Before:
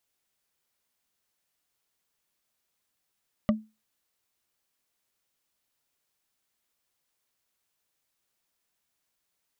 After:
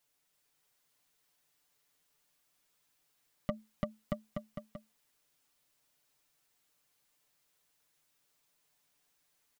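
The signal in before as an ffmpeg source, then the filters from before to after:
-f lavfi -i "aevalsrc='0.15*pow(10,-3*t/0.26)*sin(2*PI*217*t)+0.0891*pow(10,-3*t/0.077)*sin(2*PI*598.3*t)+0.0531*pow(10,-3*t/0.034)*sin(2*PI*1172.7*t)+0.0316*pow(10,-3*t/0.019)*sin(2*PI*1938.5*t)+0.0188*pow(10,-3*t/0.012)*sin(2*PI*2894.8*t)':d=0.45:s=44100"
-filter_complex "[0:a]aecho=1:1:6.8:0.69,asplit=2[a][b];[b]aecho=0:1:340|629|874.6|1083|1261:0.631|0.398|0.251|0.158|0.1[c];[a][c]amix=inputs=2:normalize=0,alimiter=limit=-22dB:level=0:latency=1:release=87"

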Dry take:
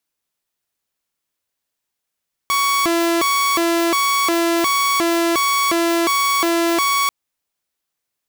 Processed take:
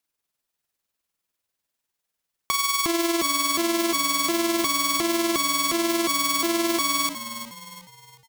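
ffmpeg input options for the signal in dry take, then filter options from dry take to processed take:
-f lavfi -i "aevalsrc='0.237*(2*mod((728.5*t+391.5/1.4*(0.5-abs(mod(1.4*t,1)-0.5))),1)-1)':d=4.59:s=44100"
-filter_complex "[0:a]acrossover=split=300|3000[a][b][c];[b]acompressor=threshold=-24dB:ratio=6[d];[a][d][c]amix=inputs=3:normalize=0,tremolo=f=20:d=0.519,asplit=2[e][f];[f]asplit=4[g][h][i][j];[g]adelay=361,afreqshift=-52,volume=-11dB[k];[h]adelay=722,afreqshift=-104,volume=-18.5dB[l];[i]adelay=1083,afreqshift=-156,volume=-26.1dB[m];[j]adelay=1444,afreqshift=-208,volume=-33.6dB[n];[k][l][m][n]amix=inputs=4:normalize=0[o];[e][o]amix=inputs=2:normalize=0"

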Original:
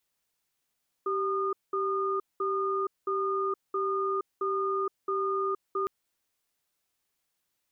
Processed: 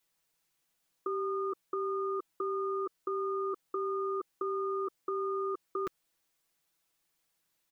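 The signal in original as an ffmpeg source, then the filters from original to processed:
-f lavfi -i "aevalsrc='0.0355*(sin(2*PI*389*t)+sin(2*PI*1220*t))*clip(min(mod(t,0.67),0.47-mod(t,0.67))/0.005,0,1)':d=4.81:s=44100"
-af "aecho=1:1:6.1:0.62"

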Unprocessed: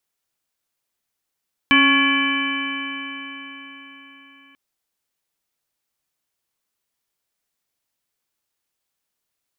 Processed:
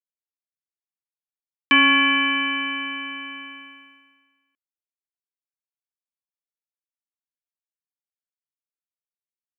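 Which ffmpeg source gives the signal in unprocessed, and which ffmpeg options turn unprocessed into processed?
-f lavfi -i "aevalsrc='0.158*pow(10,-3*t/4.4)*sin(2*PI*273.3*t)+0.0158*pow(10,-3*t/4.4)*sin(2*PI*548.4*t)+0.0188*pow(10,-3*t/4.4)*sin(2*PI*827.07*t)+0.112*pow(10,-3*t/4.4)*sin(2*PI*1111.05*t)+0.0188*pow(10,-3*t/4.4)*sin(2*PI*1402.04*t)+0.133*pow(10,-3*t/4.4)*sin(2*PI*1701.63*t)+0.0188*pow(10,-3*t/4.4)*sin(2*PI*2011.37*t)+0.188*pow(10,-3*t/4.4)*sin(2*PI*2332.69*t)+0.0251*pow(10,-3*t/4.4)*sin(2*PI*2666.95*t)+0.119*pow(10,-3*t/4.4)*sin(2*PI*3015.38*t)':d=2.84:s=44100"
-af "agate=range=-33dB:threshold=-35dB:ratio=3:detection=peak,highpass=260"

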